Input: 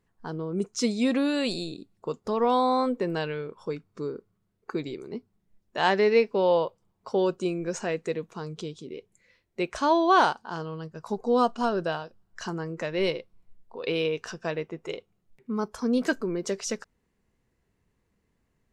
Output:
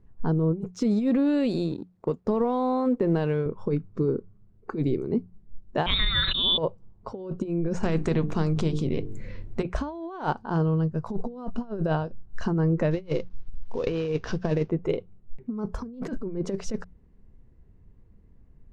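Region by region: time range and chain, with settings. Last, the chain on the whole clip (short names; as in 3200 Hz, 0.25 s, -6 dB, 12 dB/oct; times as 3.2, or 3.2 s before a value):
0.7–3.46 G.711 law mismatch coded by A + HPF 160 Hz 6 dB/oct + compressor, threshold -28 dBFS
5.86–6.58 inverted band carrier 4000 Hz + comb 5.2 ms, depth 41% + sustainer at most 25 dB/s
7.83–9.63 low shelf 270 Hz +9.5 dB + notches 50/100/150/200/250/300/350/400/450 Hz + spectral compressor 2:1
12.91–14.7 CVSD 32 kbps + high shelf 3400 Hz +9.5 dB
whole clip: tilt -4.5 dB/oct; negative-ratio compressor -24 dBFS, ratio -0.5; notches 60/120/180 Hz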